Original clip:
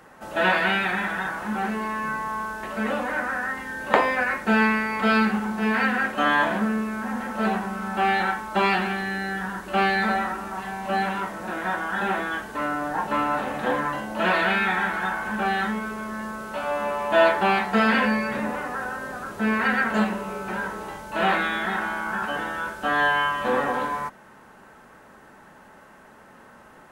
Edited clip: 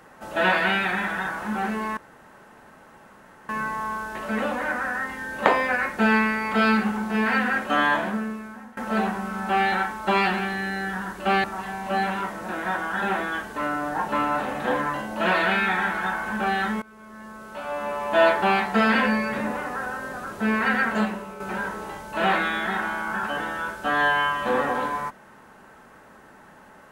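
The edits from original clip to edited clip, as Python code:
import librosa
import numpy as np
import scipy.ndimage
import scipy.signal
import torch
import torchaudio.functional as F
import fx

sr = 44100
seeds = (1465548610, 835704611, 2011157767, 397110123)

y = fx.edit(x, sr, fx.insert_room_tone(at_s=1.97, length_s=1.52),
    fx.fade_out_to(start_s=6.29, length_s=0.96, floor_db=-20.5),
    fx.cut(start_s=9.92, length_s=0.51),
    fx.fade_in_from(start_s=15.81, length_s=1.45, floor_db=-21.0),
    fx.fade_out_to(start_s=19.86, length_s=0.53, floor_db=-8.0), tone=tone)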